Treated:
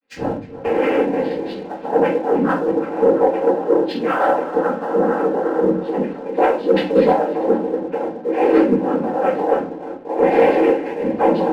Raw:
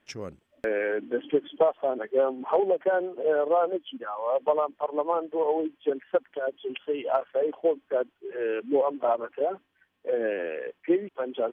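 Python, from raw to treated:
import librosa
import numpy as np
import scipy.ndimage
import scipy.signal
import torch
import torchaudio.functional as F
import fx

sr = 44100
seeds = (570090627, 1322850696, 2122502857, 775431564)

p1 = fx.over_compress(x, sr, threshold_db=-29.0, ratio=-0.5)
p2 = fx.high_shelf(p1, sr, hz=2100.0, db=-9.5)
p3 = p2 + fx.echo_filtered(p2, sr, ms=325, feedback_pct=66, hz=2700.0, wet_db=-11.5, dry=0)
p4 = fx.vibrato(p3, sr, rate_hz=1.0, depth_cents=73.0)
p5 = fx.noise_vocoder(p4, sr, seeds[0], bands=8)
p6 = scipy.signal.sosfilt(scipy.signal.butter(2, 3500.0, 'lowpass', fs=sr, output='sos'), p5)
p7 = fx.room_shoebox(p6, sr, seeds[1], volume_m3=41.0, walls='mixed', distance_m=1.9)
p8 = fx.leveller(p7, sr, passes=1)
p9 = p8 + 0.47 * np.pad(p8, (int(3.8 * sr / 1000.0), 0))[:len(p8)]
p10 = fx.band_widen(p9, sr, depth_pct=40)
y = p10 * librosa.db_to_amplitude(-1.5)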